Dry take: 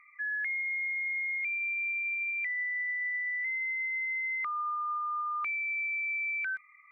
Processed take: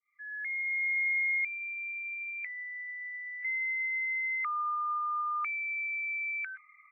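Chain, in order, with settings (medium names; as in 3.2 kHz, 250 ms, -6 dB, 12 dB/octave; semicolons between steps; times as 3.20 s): fade-in on the opening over 0.99 s; Chebyshev band-pass 1.2–2.4 kHz, order 2; comb 2.3 ms, depth 61%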